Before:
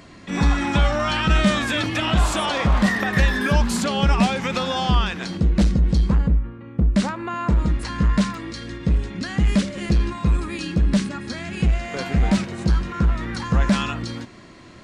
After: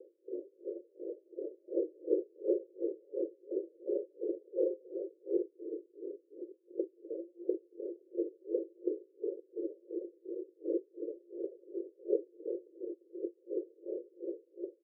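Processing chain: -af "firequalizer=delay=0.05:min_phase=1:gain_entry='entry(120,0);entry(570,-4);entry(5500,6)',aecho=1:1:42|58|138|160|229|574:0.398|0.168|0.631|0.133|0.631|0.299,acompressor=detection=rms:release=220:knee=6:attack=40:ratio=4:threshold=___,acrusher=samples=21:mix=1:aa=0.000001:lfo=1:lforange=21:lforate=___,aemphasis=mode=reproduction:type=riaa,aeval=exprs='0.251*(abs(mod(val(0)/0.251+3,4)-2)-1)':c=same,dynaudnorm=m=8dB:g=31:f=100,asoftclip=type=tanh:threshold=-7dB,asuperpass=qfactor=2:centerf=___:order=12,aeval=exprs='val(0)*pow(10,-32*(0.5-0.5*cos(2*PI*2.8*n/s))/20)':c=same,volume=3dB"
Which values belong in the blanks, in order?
-32dB, 0.51, 430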